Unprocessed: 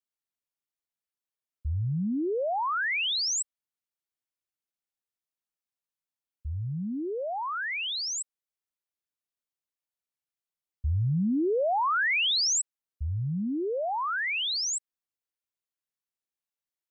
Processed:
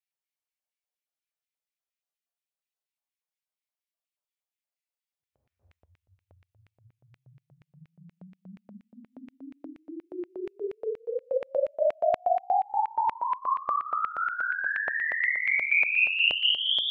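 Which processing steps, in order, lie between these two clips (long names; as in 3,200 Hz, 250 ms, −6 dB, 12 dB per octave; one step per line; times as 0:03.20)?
extreme stretch with random phases 7.8×, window 0.10 s, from 0:10.13
tuned comb filter 90 Hz, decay 0.31 s, harmonics all, mix 50%
auto-filter high-pass square 4.2 Hz 620–2,300 Hz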